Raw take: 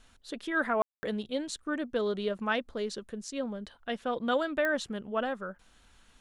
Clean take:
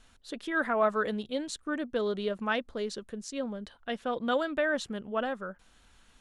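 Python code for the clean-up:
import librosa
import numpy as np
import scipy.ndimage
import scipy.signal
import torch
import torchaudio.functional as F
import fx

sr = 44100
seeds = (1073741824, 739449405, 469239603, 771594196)

y = fx.fix_declick_ar(x, sr, threshold=10.0)
y = fx.fix_ambience(y, sr, seeds[0], print_start_s=5.58, print_end_s=6.08, start_s=0.82, end_s=1.03)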